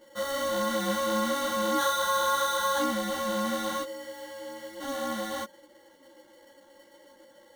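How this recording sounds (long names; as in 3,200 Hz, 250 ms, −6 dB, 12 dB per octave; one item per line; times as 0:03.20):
aliases and images of a low sample rate 2,500 Hz, jitter 0%
a shimmering, thickened sound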